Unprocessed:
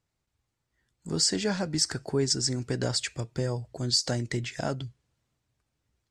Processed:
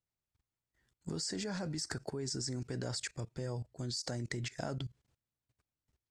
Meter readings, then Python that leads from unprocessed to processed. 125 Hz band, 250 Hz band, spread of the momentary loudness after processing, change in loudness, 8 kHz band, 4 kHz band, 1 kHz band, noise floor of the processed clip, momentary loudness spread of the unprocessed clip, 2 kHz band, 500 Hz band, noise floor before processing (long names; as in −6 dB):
−8.0 dB, −9.0 dB, 5 LU, −11.0 dB, −12.0 dB, −13.0 dB, −9.0 dB, below −85 dBFS, 9 LU, −8.0 dB, −10.5 dB, −82 dBFS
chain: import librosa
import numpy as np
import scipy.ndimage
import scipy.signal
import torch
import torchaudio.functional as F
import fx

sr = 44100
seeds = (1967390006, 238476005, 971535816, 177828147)

y = fx.dynamic_eq(x, sr, hz=3000.0, q=2.0, threshold_db=-47.0, ratio=4.0, max_db=-7)
y = fx.level_steps(y, sr, step_db=19)